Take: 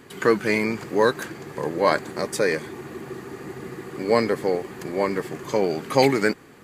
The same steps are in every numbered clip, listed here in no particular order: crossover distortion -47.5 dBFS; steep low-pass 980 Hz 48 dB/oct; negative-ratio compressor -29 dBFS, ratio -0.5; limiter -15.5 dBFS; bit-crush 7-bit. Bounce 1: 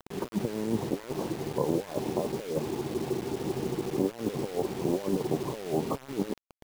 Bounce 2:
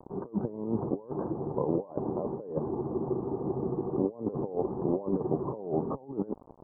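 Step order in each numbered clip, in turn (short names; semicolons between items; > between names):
crossover distortion > steep low-pass > negative-ratio compressor > bit-crush > limiter; bit-crush > crossover distortion > negative-ratio compressor > limiter > steep low-pass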